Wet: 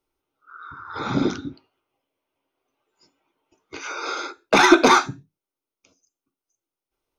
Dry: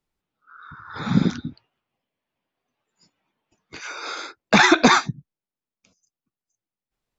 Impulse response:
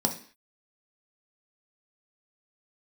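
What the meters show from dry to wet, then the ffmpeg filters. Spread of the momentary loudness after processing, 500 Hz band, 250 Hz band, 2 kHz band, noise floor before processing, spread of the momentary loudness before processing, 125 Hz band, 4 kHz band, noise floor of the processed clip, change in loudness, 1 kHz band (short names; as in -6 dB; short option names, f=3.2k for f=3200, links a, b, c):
21 LU, +3.5 dB, -0.5 dB, -1.0 dB, under -85 dBFS, 22 LU, -7.0 dB, -1.0 dB, under -85 dBFS, -0.5 dB, +2.0 dB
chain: -filter_complex "[0:a]acontrast=75,asplit=2[a][b];[1:a]atrim=start_sample=2205,asetrate=70560,aresample=44100,highshelf=f=4.8k:g=4.5[c];[b][c]afir=irnorm=-1:irlink=0,volume=-9dB[d];[a][d]amix=inputs=2:normalize=0,volume=-8dB"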